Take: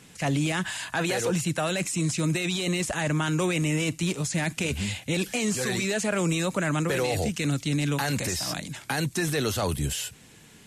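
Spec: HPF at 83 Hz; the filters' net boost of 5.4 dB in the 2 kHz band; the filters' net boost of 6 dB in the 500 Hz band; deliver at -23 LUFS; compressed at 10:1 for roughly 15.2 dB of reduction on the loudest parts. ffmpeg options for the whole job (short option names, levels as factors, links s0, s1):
-af "highpass=83,equalizer=f=500:t=o:g=7,equalizer=f=2000:t=o:g=6.5,acompressor=threshold=0.0224:ratio=10,volume=4.47"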